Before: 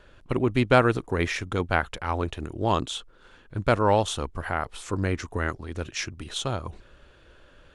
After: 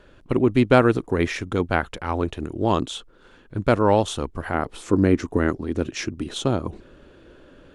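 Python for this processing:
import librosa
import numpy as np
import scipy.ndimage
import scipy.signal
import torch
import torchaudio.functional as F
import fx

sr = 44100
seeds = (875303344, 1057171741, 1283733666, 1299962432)

y = fx.peak_eq(x, sr, hz=280.0, db=fx.steps((0.0, 6.5), (4.54, 13.5)), octaves=1.9)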